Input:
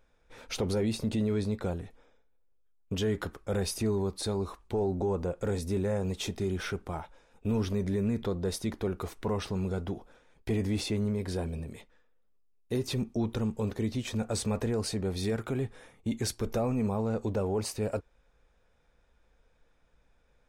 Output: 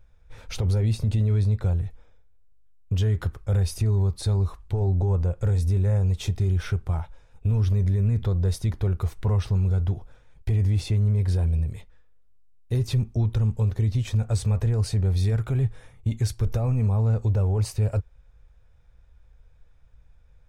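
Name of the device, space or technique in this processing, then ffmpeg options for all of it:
car stereo with a boomy subwoofer: -af "lowshelf=frequency=160:width_type=q:width=1.5:gain=13.5,alimiter=limit=-15.5dB:level=0:latency=1:release=133"

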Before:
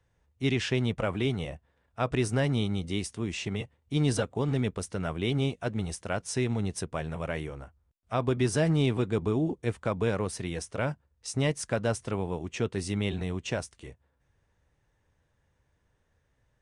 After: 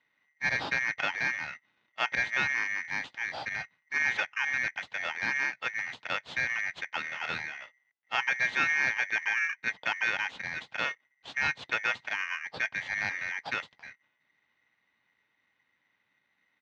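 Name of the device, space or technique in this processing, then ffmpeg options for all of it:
ring modulator pedal into a guitar cabinet: -filter_complex "[0:a]aeval=exprs='val(0)*sgn(sin(2*PI*2000*n/s))':channel_layout=same,highpass=83,equalizer=frequency=130:width_type=q:width=4:gain=4,equalizer=frequency=380:width_type=q:width=4:gain=-4,equalizer=frequency=860:width_type=q:width=4:gain=6,equalizer=frequency=2100:width_type=q:width=4:gain=-4,lowpass=frequency=3800:width=0.5412,lowpass=frequency=3800:width=1.3066,asplit=3[link_01][link_02][link_03];[link_01]afade=type=out:start_time=7.03:duration=0.02[link_04];[link_02]asplit=2[link_05][link_06];[link_06]adelay=27,volume=-7dB[link_07];[link_05][link_07]amix=inputs=2:normalize=0,afade=type=in:start_time=7.03:duration=0.02,afade=type=out:start_time=7.62:duration=0.02[link_08];[link_03]afade=type=in:start_time=7.62:duration=0.02[link_09];[link_04][link_08][link_09]amix=inputs=3:normalize=0"

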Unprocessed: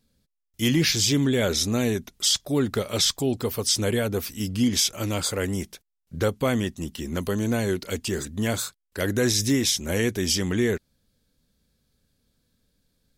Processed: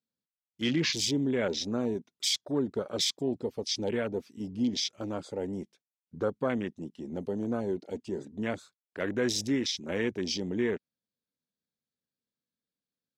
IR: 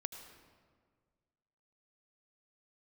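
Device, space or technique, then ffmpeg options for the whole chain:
over-cleaned archive recording: -af "highpass=180,lowpass=6500,afwtdn=0.0282,volume=-5dB"

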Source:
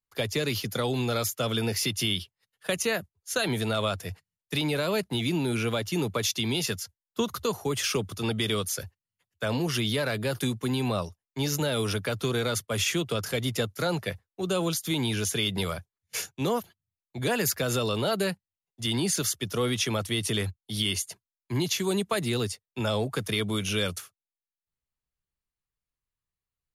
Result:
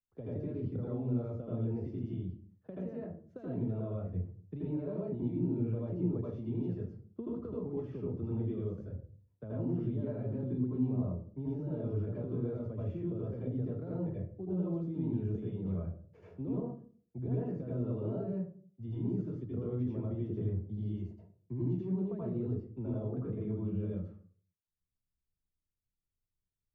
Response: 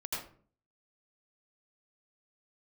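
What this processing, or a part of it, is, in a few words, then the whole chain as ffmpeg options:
television next door: -filter_complex "[0:a]acompressor=threshold=-30dB:ratio=6,lowpass=340[link_01];[1:a]atrim=start_sample=2205[link_02];[link_01][link_02]afir=irnorm=-1:irlink=0,asettb=1/sr,asplit=3[link_03][link_04][link_05];[link_03]atrim=end=23.214[link_06];[link_04]atrim=start=23.21:end=23.91,asetpts=PTS-STARTPTS,afade=type=in:duration=0.004:curve=qsin,afade=type=out:start_time=0.696:duration=0.004:curve=qsin,lowpass=2800[link_07];[link_05]atrim=start=23.906[link_08];[link_06][link_07]acrossfade=duration=0.004:curve1=hsin:curve2=qsin[link_09];[link_09][link_08]acrossfade=duration=0.004:curve1=qsin:curve2=hsin"

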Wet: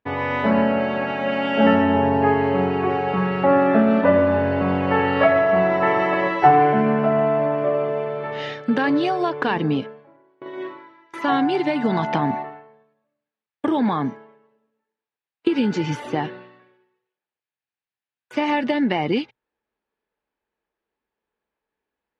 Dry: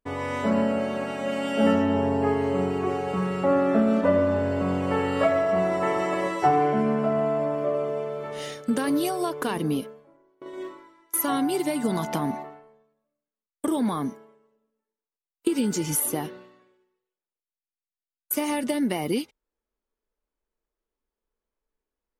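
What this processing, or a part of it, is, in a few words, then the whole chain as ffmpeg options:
guitar cabinet: -af "highpass=85,equalizer=frequency=120:width_type=q:width=4:gain=8,equalizer=frequency=830:width_type=q:width=4:gain=6,equalizer=frequency=1700:width_type=q:width=4:gain=7,equalizer=frequency=2500:width_type=q:width=4:gain=4,lowpass=frequency=4200:width=0.5412,lowpass=frequency=4200:width=1.3066,volume=4dB"

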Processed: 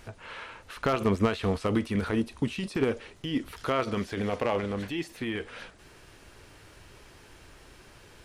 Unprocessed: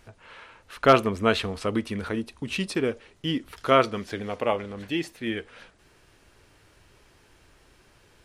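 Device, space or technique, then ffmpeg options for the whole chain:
de-esser from a sidechain: -filter_complex "[0:a]asplit=2[link_01][link_02];[link_02]highpass=4900,apad=whole_len=363450[link_03];[link_01][link_03]sidechaincompress=threshold=-55dB:ratio=3:attack=1.1:release=21,volume=5.5dB"

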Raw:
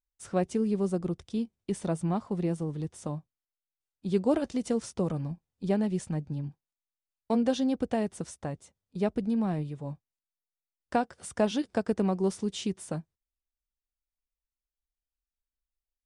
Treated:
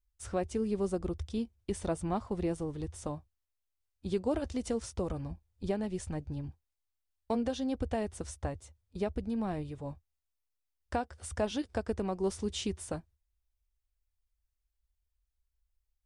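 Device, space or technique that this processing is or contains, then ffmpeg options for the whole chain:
car stereo with a boomy subwoofer: -af "lowshelf=frequency=110:width_type=q:width=3:gain=11.5,alimiter=limit=-21.5dB:level=0:latency=1:release=496"

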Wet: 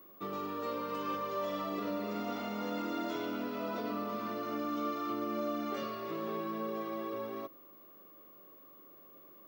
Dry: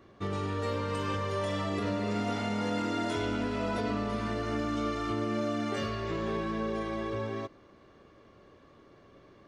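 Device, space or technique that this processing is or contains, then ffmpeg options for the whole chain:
old television with a line whistle: -af "highpass=frequency=160:width=0.5412,highpass=frequency=160:width=1.3066,equalizer=frequency=310:width_type=q:width=4:gain=4,equalizer=frequency=580:width_type=q:width=4:gain=4,equalizer=frequency=1200:width_type=q:width=4:gain=7,equalizer=frequency=1700:width_type=q:width=4:gain=-4,lowpass=frequency=6700:width=0.5412,lowpass=frequency=6700:width=1.3066,aeval=exprs='val(0)+0.00398*sin(2*PI*15625*n/s)':channel_layout=same,volume=-7dB"

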